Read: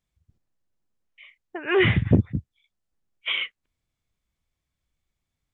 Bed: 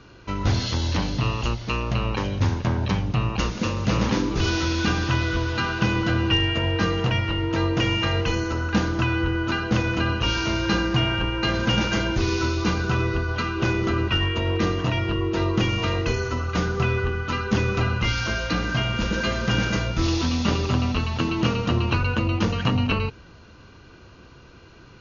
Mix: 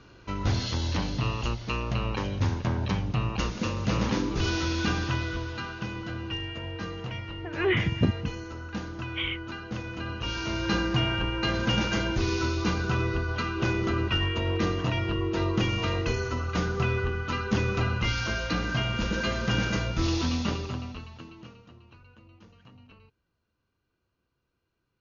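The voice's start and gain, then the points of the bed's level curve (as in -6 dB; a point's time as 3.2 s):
5.90 s, -5.5 dB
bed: 4.96 s -4.5 dB
5.89 s -13 dB
9.9 s -13 dB
10.75 s -4 dB
20.34 s -4 dB
21.8 s -31.5 dB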